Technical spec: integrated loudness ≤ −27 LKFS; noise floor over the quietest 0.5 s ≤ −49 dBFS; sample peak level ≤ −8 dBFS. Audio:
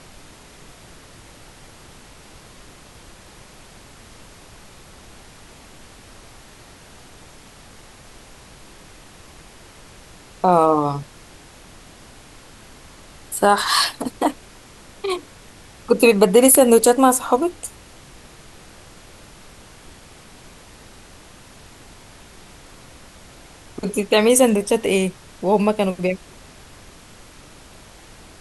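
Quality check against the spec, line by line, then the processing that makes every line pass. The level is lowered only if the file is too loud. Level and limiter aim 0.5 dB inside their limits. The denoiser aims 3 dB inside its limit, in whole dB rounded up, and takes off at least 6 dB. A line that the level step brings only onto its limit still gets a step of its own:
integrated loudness −17.5 LKFS: out of spec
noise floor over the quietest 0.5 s −45 dBFS: out of spec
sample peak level −2.0 dBFS: out of spec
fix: level −10 dB

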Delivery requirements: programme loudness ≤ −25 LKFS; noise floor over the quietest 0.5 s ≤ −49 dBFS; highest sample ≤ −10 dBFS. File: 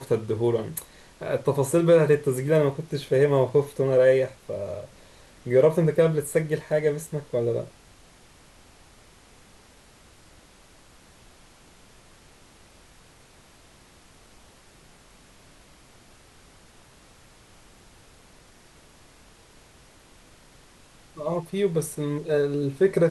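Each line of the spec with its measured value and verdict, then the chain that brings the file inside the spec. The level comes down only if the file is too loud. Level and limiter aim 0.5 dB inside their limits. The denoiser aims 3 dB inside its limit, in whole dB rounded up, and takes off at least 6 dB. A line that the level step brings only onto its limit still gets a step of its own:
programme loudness −24.0 LKFS: out of spec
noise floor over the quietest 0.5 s −53 dBFS: in spec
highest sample −7.5 dBFS: out of spec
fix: level −1.5 dB
brickwall limiter −10.5 dBFS

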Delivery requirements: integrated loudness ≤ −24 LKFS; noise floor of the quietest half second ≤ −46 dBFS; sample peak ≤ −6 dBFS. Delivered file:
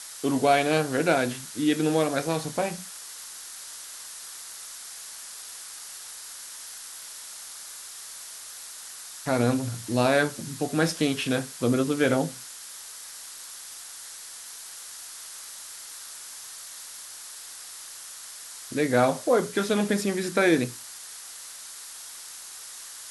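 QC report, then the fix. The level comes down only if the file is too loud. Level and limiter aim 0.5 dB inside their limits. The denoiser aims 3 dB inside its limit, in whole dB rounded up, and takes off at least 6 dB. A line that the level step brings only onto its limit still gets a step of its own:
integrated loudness −29.0 LKFS: in spec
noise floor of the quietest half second −42 dBFS: out of spec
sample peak −8.0 dBFS: in spec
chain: broadband denoise 7 dB, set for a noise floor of −42 dBFS

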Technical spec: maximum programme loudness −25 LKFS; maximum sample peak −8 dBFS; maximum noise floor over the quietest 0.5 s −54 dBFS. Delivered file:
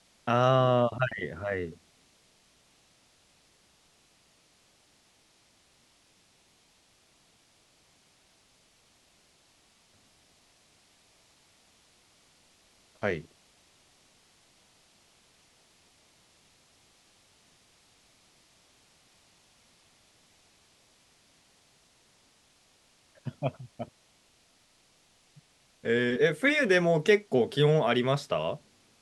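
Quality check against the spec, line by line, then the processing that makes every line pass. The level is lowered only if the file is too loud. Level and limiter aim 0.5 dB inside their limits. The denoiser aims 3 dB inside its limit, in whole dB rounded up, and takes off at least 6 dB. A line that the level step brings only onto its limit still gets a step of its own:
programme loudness −27.0 LKFS: in spec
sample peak −9.5 dBFS: in spec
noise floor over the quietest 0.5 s −65 dBFS: in spec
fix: no processing needed

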